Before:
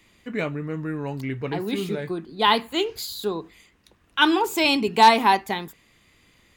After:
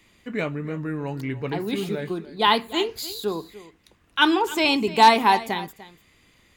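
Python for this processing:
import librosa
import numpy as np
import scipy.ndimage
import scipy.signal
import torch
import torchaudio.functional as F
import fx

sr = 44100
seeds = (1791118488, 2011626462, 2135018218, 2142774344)

y = fx.high_shelf(x, sr, hz=8800.0, db=-7.5, at=(4.34, 4.87))
y = y + 10.0 ** (-17.0 / 20.0) * np.pad(y, (int(296 * sr / 1000.0), 0))[:len(y)]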